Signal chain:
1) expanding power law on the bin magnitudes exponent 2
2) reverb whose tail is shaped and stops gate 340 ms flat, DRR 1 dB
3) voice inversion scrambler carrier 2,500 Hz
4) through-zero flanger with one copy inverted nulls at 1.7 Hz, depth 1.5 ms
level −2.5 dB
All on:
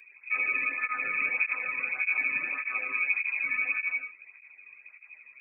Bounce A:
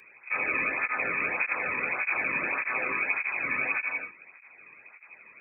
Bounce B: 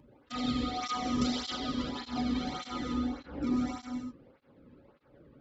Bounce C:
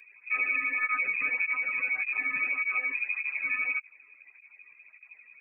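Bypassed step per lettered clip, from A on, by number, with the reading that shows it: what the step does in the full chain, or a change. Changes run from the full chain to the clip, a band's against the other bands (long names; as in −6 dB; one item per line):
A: 1, 2 kHz band −10.5 dB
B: 3, 2 kHz band −29.0 dB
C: 2, change in crest factor −2.5 dB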